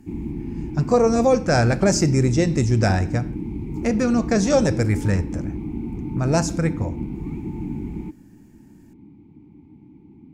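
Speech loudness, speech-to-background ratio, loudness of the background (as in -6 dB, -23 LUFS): -20.5 LUFS, 9.5 dB, -30.0 LUFS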